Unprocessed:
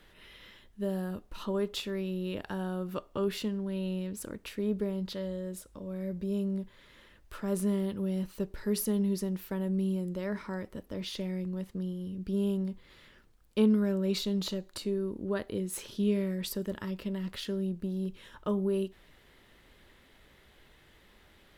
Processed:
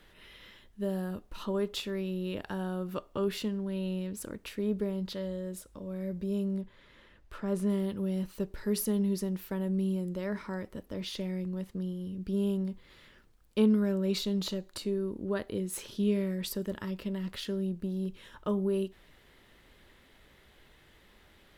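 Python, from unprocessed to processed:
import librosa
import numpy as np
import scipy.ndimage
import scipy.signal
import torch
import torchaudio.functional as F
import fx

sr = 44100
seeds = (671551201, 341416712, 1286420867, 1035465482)

y = fx.lowpass(x, sr, hz=3600.0, slope=6, at=(6.61, 7.7))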